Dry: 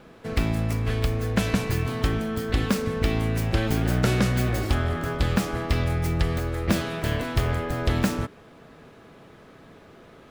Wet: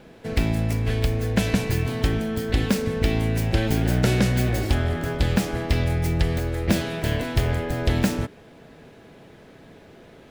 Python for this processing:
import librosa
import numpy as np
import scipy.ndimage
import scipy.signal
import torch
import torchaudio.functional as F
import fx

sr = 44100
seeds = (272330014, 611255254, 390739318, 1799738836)

y = fx.peak_eq(x, sr, hz=1200.0, db=-9.0, octaves=0.39)
y = y * librosa.db_to_amplitude(2.0)